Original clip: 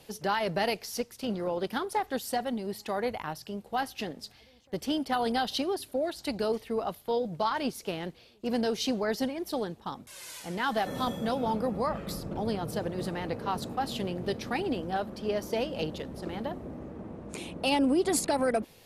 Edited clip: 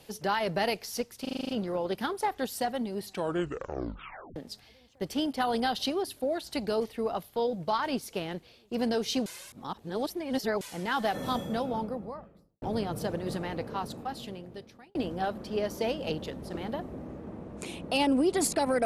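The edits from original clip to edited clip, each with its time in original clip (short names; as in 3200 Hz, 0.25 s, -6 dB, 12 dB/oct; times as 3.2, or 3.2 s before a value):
1.21 stutter 0.04 s, 8 plays
2.73 tape stop 1.35 s
8.98–10.33 reverse
11.04–12.34 studio fade out
13.09–14.67 fade out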